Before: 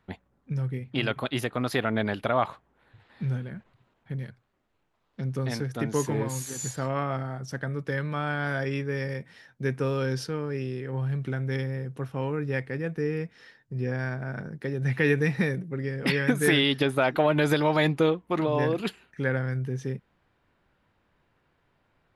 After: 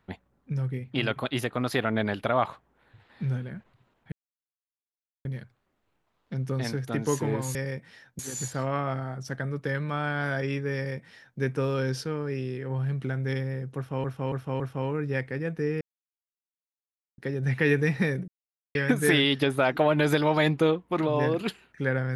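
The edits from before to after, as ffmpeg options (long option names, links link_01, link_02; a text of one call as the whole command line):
ffmpeg -i in.wav -filter_complex "[0:a]asplit=11[link_01][link_02][link_03][link_04][link_05][link_06][link_07][link_08][link_09][link_10][link_11];[link_01]atrim=end=4.12,asetpts=PTS-STARTPTS,afade=type=out:start_time=4.116:duration=0.004:curve=hsin,apad=pad_dur=1.13[link_12];[link_02]atrim=start=4.12:end=6.422,asetpts=PTS-STARTPTS,afade=type=in:duration=0.004:curve=hsin[link_13];[link_03]atrim=start=8.978:end=9.622[link_14];[link_04]atrim=start=6.418:end=12.272[link_15];[link_05]atrim=start=11.988:end=12.272[link_16];[link_06]atrim=start=11.988:end=12.272[link_17];[link_07]atrim=start=11.988:end=13.2,asetpts=PTS-STARTPTS,afade=type=out:start_time=1.208:duration=0.004:curve=hsin[link_18];[link_08]atrim=start=13.2:end=14.57,asetpts=PTS-STARTPTS,volume=0[link_19];[link_09]atrim=start=14.57:end=15.67,asetpts=PTS-STARTPTS,afade=type=in:duration=0.004:curve=hsin,afade=type=out:start_time=1.096:duration=0.004:curve=hsin[link_20];[link_10]atrim=start=15.67:end=16.14,asetpts=PTS-STARTPTS,volume=0[link_21];[link_11]atrim=start=16.14,asetpts=PTS-STARTPTS,afade=type=in:duration=0.004:curve=hsin[link_22];[link_12][link_13]concat=n=2:v=0:a=1[link_23];[link_23][link_14]acrossfade=duration=0.004:curve1=hsin:curve2=hsin[link_24];[link_24][link_15]acrossfade=duration=0.004:curve1=hsin:curve2=hsin[link_25];[link_25][link_16]acrossfade=duration=0.004:curve1=hsin:curve2=hsin[link_26];[link_26][link_17]acrossfade=duration=0.004:curve1=hsin:curve2=hsin[link_27];[link_18][link_19][link_20][link_21][link_22]concat=n=5:v=0:a=1[link_28];[link_27][link_28]acrossfade=duration=0.004:curve1=hsin:curve2=hsin" out.wav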